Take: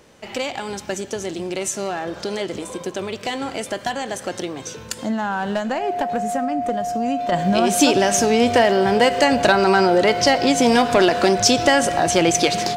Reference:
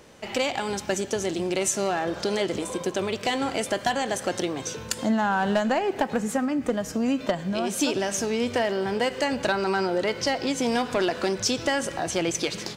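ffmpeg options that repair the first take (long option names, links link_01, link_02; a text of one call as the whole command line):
ffmpeg -i in.wav -af "bandreject=frequency=710:width=30,asetnsamples=nb_out_samples=441:pad=0,asendcmd='7.32 volume volume -9dB',volume=0dB" out.wav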